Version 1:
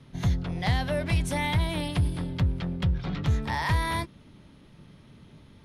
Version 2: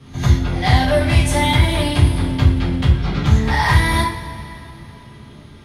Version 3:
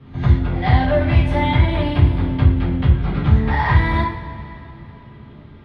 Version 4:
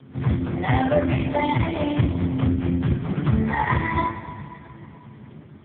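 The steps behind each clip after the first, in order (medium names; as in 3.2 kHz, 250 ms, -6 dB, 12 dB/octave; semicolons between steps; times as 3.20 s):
pre-echo 95 ms -18 dB; two-slope reverb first 0.42 s, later 3 s, from -18 dB, DRR -6 dB; trim +5 dB
distance through air 390 m
AMR-NB 4.75 kbps 8 kHz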